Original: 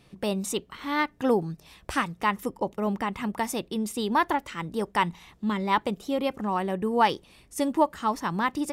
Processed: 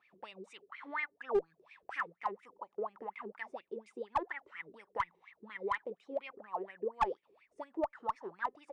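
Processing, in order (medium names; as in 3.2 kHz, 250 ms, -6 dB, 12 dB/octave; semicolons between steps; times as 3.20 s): in parallel at -1.5 dB: compression 6:1, threshold -37 dBFS, peak gain reduction 20 dB; on the sum: wah-wah 4.2 Hz 380–2400 Hz, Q 12; one-sided clip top -25.5 dBFS; resampled via 22.05 kHz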